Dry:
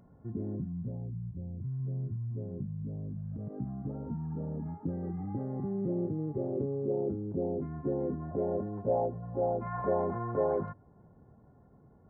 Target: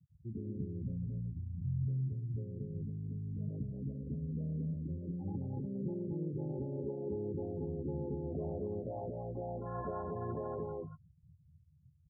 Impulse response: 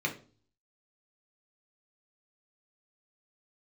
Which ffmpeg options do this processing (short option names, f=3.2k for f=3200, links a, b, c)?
-filter_complex "[0:a]acrossover=split=160|580[a][b][c];[a]acontrast=46[d];[d][b][c]amix=inputs=3:normalize=0,alimiter=level_in=2dB:limit=-24dB:level=0:latency=1:release=426,volume=-2dB,afwtdn=0.00794,adynamicequalizer=threshold=0.00158:dfrequency=910:dqfactor=4.5:tfrequency=910:tqfactor=4.5:attack=5:release=100:ratio=0.375:range=1.5:mode=boostabove:tftype=bell,afftfilt=real='re*gte(hypot(re,im),0.0126)':imag='im*gte(hypot(re,im),0.0126)':win_size=1024:overlap=0.75,asplit=2[e][f];[f]adelay=14,volume=-12dB[g];[e][g]amix=inputs=2:normalize=0,asplit=2[h][i];[i]aecho=0:1:222|234:0.562|0.562[j];[h][j]amix=inputs=2:normalize=0,volume=-6dB"